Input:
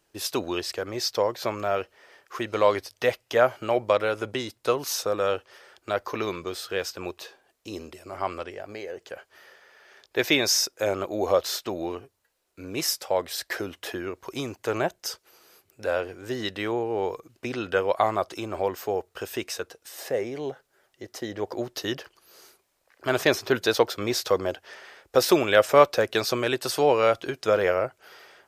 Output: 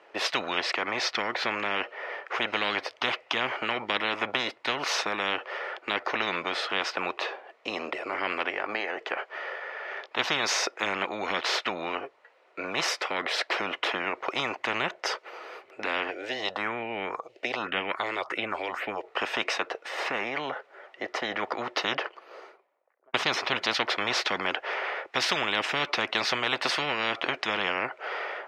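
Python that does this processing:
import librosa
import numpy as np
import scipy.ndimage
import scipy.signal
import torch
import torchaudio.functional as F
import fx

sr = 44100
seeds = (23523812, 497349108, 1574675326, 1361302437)

y = fx.phaser_stages(x, sr, stages=4, low_hz=180.0, high_hz=1100.0, hz=fx.line((16.1, 0.54), (19.03, 2.8)), feedback_pct=25, at=(16.1, 19.03), fade=0.02)
y = fx.studio_fade_out(y, sr, start_s=21.73, length_s=1.41)
y = scipy.signal.sosfilt(scipy.signal.cheby1(2, 1.0, [510.0, 2100.0], 'bandpass', fs=sr, output='sos'), y)
y = fx.notch(y, sr, hz=1600.0, q=9.4)
y = fx.spectral_comp(y, sr, ratio=10.0)
y = y * librosa.db_to_amplitude(-1.5)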